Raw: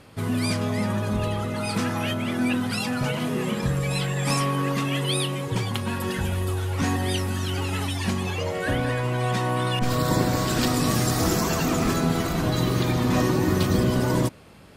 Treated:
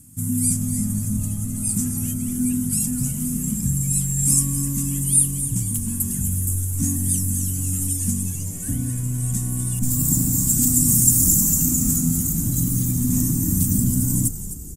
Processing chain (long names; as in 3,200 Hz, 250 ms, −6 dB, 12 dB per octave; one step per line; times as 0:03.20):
drawn EQ curve 270 Hz 0 dB, 410 Hz −29 dB, 4,300 Hz −19 dB, 7,400 Hz +15 dB
echo with shifted repeats 257 ms, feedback 54%, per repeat −95 Hz, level −11 dB
level +2 dB